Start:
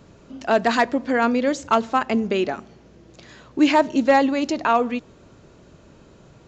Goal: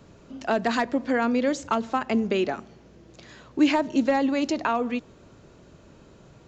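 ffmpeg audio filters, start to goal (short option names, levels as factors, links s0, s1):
-filter_complex "[0:a]acrossover=split=310[s0][s1];[s1]acompressor=threshold=0.112:ratio=6[s2];[s0][s2]amix=inputs=2:normalize=0,volume=0.794"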